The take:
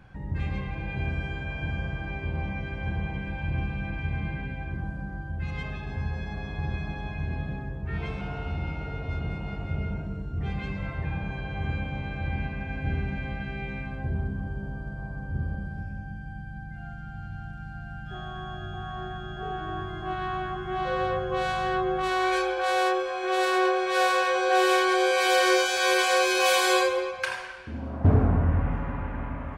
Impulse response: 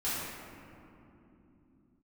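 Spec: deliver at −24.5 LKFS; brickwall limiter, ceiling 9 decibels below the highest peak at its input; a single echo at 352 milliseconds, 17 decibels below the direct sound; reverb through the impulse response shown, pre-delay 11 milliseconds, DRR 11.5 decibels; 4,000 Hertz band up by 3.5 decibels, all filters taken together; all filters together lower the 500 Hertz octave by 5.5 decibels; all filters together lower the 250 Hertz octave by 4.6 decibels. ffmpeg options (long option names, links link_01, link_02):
-filter_complex "[0:a]equalizer=frequency=250:width_type=o:gain=-5.5,equalizer=frequency=500:width_type=o:gain=-5,equalizer=frequency=4000:width_type=o:gain=4.5,alimiter=limit=-18dB:level=0:latency=1,aecho=1:1:352:0.141,asplit=2[link_01][link_02];[1:a]atrim=start_sample=2205,adelay=11[link_03];[link_02][link_03]afir=irnorm=-1:irlink=0,volume=-19dB[link_04];[link_01][link_04]amix=inputs=2:normalize=0,volume=6dB"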